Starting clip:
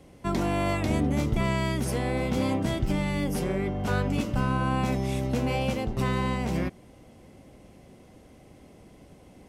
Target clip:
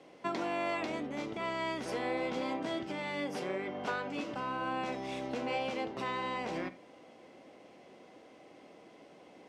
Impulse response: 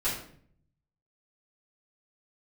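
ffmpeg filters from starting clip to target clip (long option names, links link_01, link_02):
-filter_complex "[0:a]acompressor=threshold=-28dB:ratio=6,highpass=370,lowpass=4800,asplit=2[link_01][link_02];[1:a]atrim=start_sample=2205,atrim=end_sample=3969[link_03];[link_02][link_03]afir=irnorm=-1:irlink=0,volume=-17dB[link_04];[link_01][link_04]amix=inputs=2:normalize=0"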